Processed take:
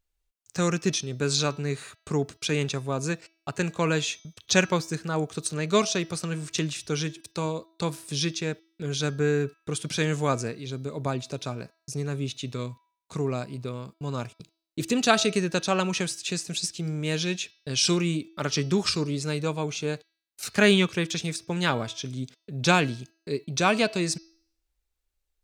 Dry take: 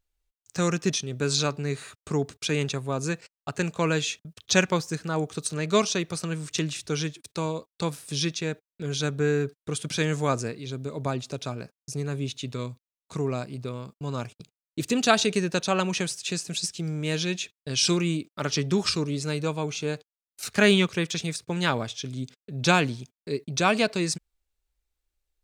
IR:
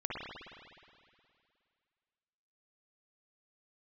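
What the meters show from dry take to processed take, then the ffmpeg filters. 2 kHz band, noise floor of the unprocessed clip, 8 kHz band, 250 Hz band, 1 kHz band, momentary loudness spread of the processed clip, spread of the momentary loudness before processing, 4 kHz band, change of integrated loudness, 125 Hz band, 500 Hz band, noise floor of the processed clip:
0.0 dB, under -85 dBFS, 0.0 dB, 0.0 dB, 0.0 dB, 13 LU, 13 LU, 0.0 dB, 0.0 dB, 0.0 dB, 0.0 dB, -80 dBFS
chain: -af "bandreject=f=326.9:t=h:w=4,bandreject=f=653.8:t=h:w=4,bandreject=f=980.7:t=h:w=4,bandreject=f=1.3076k:t=h:w=4,bandreject=f=1.6345k:t=h:w=4,bandreject=f=1.9614k:t=h:w=4,bandreject=f=2.2883k:t=h:w=4,bandreject=f=2.6152k:t=h:w=4,bandreject=f=2.9421k:t=h:w=4,bandreject=f=3.269k:t=h:w=4,bandreject=f=3.5959k:t=h:w=4,bandreject=f=3.9228k:t=h:w=4,bandreject=f=4.2497k:t=h:w=4,bandreject=f=4.5766k:t=h:w=4,bandreject=f=4.9035k:t=h:w=4,bandreject=f=5.2304k:t=h:w=4,bandreject=f=5.5573k:t=h:w=4,bandreject=f=5.8842k:t=h:w=4,bandreject=f=6.2111k:t=h:w=4"

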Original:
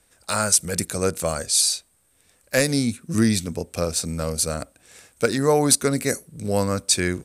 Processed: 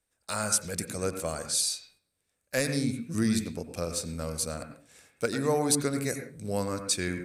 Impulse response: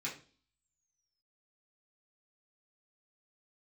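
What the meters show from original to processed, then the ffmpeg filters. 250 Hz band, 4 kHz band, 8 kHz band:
-6.5 dB, -8.5 dB, -8.5 dB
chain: -filter_complex "[0:a]agate=range=-11dB:threshold=-52dB:ratio=16:detection=peak,asplit=2[a][b];[1:a]atrim=start_sample=2205,lowpass=3k,adelay=91[c];[b][c]afir=irnorm=-1:irlink=0,volume=-8dB[d];[a][d]amix=inputs=2:normalize=0,volume=-8.5dB"

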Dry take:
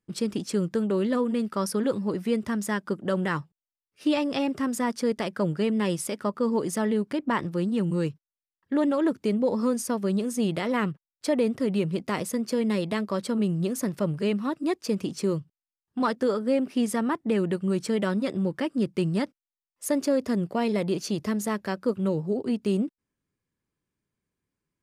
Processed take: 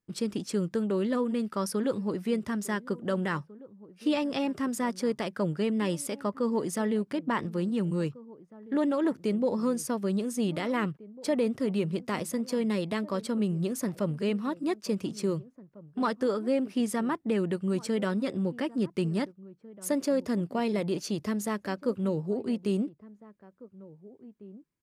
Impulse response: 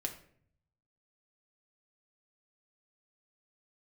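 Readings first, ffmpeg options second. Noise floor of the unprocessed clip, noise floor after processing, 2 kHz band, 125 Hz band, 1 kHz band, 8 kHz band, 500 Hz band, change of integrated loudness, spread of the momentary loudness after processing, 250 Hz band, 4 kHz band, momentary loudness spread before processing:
under -85 dBFS, -62 dBFS, -3.0 dB, -3.0 dB, -3.0 dB, -3.0 dB, -3.0 dB, -3.0 dB, 7 LU, -3.0 dB, -3.0 dB, 4 LU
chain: -filter_complex "[0:a]asplit=2[a][b];[b]adelay=1749,volume=-19dB,highshelf=f=4k:g=-39.4[c];[a][c]amix=inputs=2:normalize=0,volume=-3dB"

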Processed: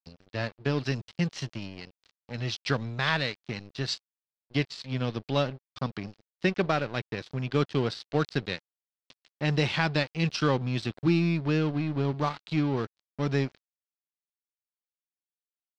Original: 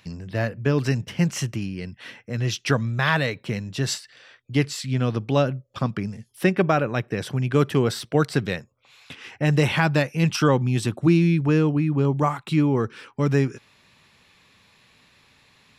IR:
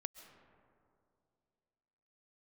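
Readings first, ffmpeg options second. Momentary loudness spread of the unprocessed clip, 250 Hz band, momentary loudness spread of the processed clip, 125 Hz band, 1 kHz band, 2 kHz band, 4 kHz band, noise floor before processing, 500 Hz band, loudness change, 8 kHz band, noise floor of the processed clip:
11 LU, -7.0 dB, 11 LU, -7.5 dB, -6.0 dB, -5.0 dB, -2.0 dB, -60 dBFS, -7.0 dB, -6.5 dB, -12.0 dB, under -85 dBFS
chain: -af "aeval=exprs='sgn(val(0))*max(abs(val(0))-0.0237,0)':c=same,lowpass=f=4.4k:t=q:w=2.8,volume=-5.5dB"

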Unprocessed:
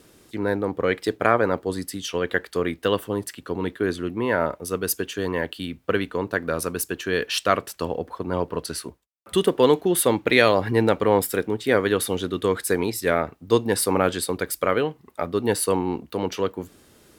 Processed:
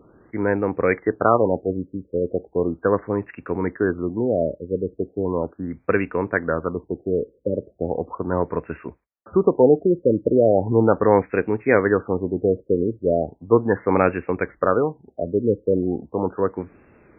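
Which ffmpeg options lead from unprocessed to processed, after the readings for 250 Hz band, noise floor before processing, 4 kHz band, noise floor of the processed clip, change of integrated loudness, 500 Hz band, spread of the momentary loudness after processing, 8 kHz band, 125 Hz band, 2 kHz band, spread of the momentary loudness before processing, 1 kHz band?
+3.0 dB, -56 dBFS, under -35 dB, -61 dBFS, +2.0 dB, +3.0 dB, 10 LU, under -40 dB, +3.0 dB, -2.5 dB, 10 LU, +0.5 dB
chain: -af "afftfilt=real='re*lt(b*sr/1024,580*pow(2800/580,0.5+0.5*sin(2*PI*0.37*pts/sr)))':imag='im*lt(b*sr/1024,580*pow(2800/580,0.5+0.5*sin(2*PI*0.37*pts/sr)))':win_size=1024:overlap=0.75,volume=3dB"

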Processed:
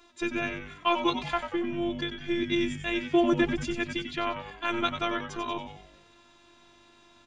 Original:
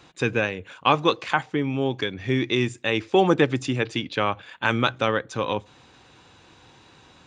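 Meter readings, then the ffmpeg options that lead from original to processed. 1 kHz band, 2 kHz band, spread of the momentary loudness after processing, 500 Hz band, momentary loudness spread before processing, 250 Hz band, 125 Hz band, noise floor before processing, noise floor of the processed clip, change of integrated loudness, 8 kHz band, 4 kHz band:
-6.0 dB, -6.5 dB, 9 LU, -7.0 dB, 7 LU, -3.0 dB, -12.0 dB, -54 dBFS, -59 dBFS, -5.5 dB, -5.0 dB, -5.0 dB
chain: -filter_complex "[0:a]afftfilt=real='hypot(re,im)*cos(PI*b)':imag='0':win_size=512:overlap=0.75,asplit=7[a][b][c][d][e][f][g];[b]adelay=93,afreqshift=-98,volume=-8.5dB[h];[c]adelay=186,afreqshift=-196,volume=-14.5dB[i];[d]adelay=279,afreqshift=-294,volume=-20.5dB[j];[e]adelay=372,afreqshift=-392,volume=-26.6dB[k];[f]adelay=465,afreqshift=-490,volume=-32.6dB[l];[g]adelay=558,afreqshift=-588,volume=-38.6dB[m];[a][h][i][j][k][l][m]amix=inputs=7:normalize=0,volume=-2.5dB"

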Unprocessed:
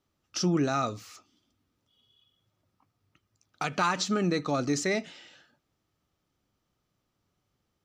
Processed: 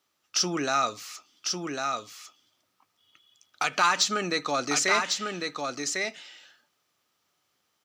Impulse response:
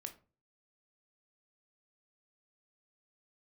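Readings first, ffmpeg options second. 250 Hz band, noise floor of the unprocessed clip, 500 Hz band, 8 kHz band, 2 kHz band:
-4.5 dB, -80 dBFS, +0.5 dB, +9.5 dB, +7.5 dB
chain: -filter_complex "[0:a]highpass=f=1.3k:p=1,asoftclip=type=tanh:threshold=-18dB,asplit=2[a][b];[b]aecho=0:1:1100:0.596[c];[a][c]amix=inputs=2:normalize=0,volume=8.5dB"

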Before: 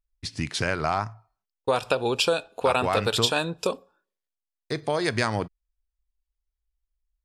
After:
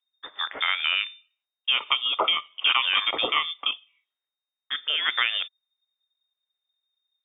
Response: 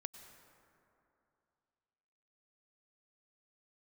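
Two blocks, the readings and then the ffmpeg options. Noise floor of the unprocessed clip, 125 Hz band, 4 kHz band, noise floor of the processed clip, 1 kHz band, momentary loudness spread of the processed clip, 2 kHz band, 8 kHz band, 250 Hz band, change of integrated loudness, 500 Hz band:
under -85 dBFS, under -30 dB, +8.0 dB, under -85 dBFS, -2.0 dB, 11 LU, +4.5 dB, under -40 dB, -16.5 dB, +2.0 dB, -13.5 dB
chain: -filter_complex "[0:a]lowpass=f=3.1k:t=q:w=0.5098,lowpass=f=3.1k:t=q:w=0.6013,lowpass=f=3.1k:t=q:w=0.9,lowpass=f=3.1k:t=q:w=2.563,afreqshift=-3700,acrossover=split=310 2600:gain=0.1 1 0.224[a][b][c];[a][b][c]amix=inputs=3:normalize=0,volume=5.5dB"

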